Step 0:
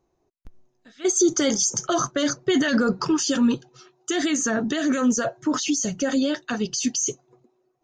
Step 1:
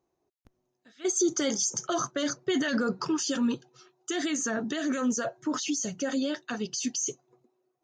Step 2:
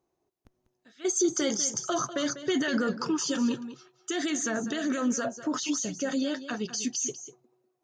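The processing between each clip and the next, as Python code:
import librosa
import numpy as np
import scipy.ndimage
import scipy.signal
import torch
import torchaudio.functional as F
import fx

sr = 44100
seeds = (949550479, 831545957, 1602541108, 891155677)

y1 = fx.highpass(x, sr, hz=140.0, slope=6)
y1 = F.gain(torch.from_numpy(y1), -6.0).numpy()
y2 = y1 + 10.0 ** (-13.0 / 20.0) * np.pad(y1, (int(196 * sr / 1000.0), 0))[:len(y1)]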